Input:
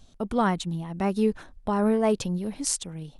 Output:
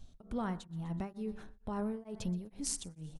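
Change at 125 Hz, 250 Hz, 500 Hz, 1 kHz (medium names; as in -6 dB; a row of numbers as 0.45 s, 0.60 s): -9.0 dB, -12.0 dB, -17.0 dB, -15.5 dB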